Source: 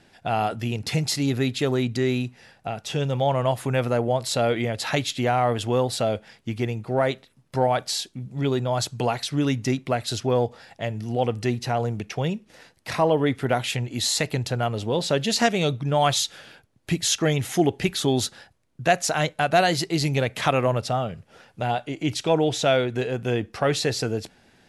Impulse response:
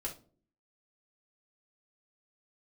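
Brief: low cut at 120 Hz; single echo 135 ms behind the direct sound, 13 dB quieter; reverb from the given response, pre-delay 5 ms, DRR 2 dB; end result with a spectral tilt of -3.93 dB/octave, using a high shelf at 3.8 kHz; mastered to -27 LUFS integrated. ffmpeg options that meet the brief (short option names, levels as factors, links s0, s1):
-filter_complex "[0:a]highpass=120,highshelf=f=3800:g=6.5,aecho=1:1:135:0.224,asplit=2[s0][s1];[1:a]atrim=start_sample=2205,adelay=5[s2];[s1][s2]afir=irnorm=-1:irlink=0,volume=0.75[s3];[s0][s3]amix=inputs=2:normalize=0,volume=0.501"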